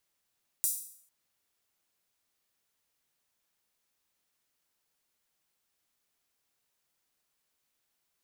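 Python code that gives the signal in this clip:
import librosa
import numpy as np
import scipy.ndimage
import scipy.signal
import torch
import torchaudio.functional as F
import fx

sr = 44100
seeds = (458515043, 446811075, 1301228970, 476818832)

y = fx.drum_hat_open(sr, length_s=0.45, from_hz=8400.0, decay_s=0.6)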